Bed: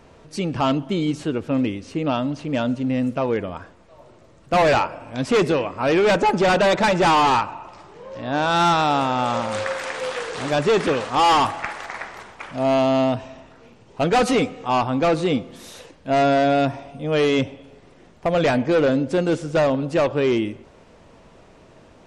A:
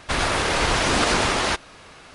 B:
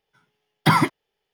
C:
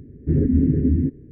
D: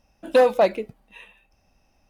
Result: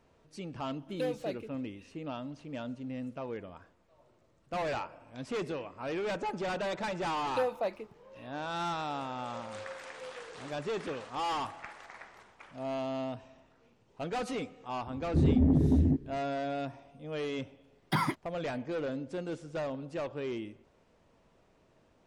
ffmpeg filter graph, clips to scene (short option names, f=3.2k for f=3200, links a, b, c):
-filter_complex "[4:a]asplit=2[a][b];[0:a]volume=-17dB[c];[a]equalizer=f=990:w=1.2:g=-12.5[d];[3:a]asoftclip=type=tanh:threshold=-13.5dB[e];[d]atrim=end=2.09,asetpts=PTS-STARTPTS,volume=-14.5dB,afade=t=in:d=0.004:c=hsin,afade=t=out:st=2.086:d=0.004:c=hsin,adelay=650[f];[b]atrim=end=2.09,asetpts=PTS-STARTPTS,volume=-15dB,afade=t=in:d=0.004:c=hsin,afade=t=out:st=2.086:d=0.004:c=hsin,adelay=7020[g];[e]atrim=end=1.31,asetpts=PTS-STARTPTS,volume=-4dB,afade=t=in:d=0.004:c=hsin,afade=t=out:st=1.306:d=0.004:c=hsin,adelay=14870[h];[2:a]atrim=end=1.33,asetpts=PTS-STARTPTS,volume=-12.5dB,afade=t=in:d=0.004:c=hsin,afade=t=out:st=1.326:d=0.004:c=hsin,adelay=17260[i];[c][f][g][h][i]amix=inputs=5:normalize=0"